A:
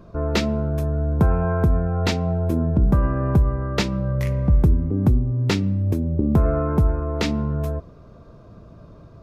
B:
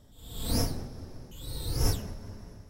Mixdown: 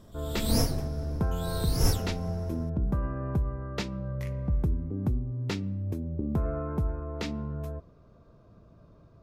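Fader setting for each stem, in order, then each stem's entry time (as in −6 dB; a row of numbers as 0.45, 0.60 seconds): −11.0, +2.0 decibels; 0.00, 0.00 seconds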